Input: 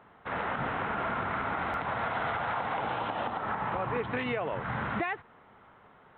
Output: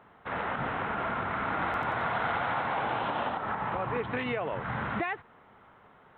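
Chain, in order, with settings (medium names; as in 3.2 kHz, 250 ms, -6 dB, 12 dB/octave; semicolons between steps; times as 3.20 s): 1.32–3.35 s: frequency-shifting echo 90 ms, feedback 58%, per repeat +35 Hz, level -5 dB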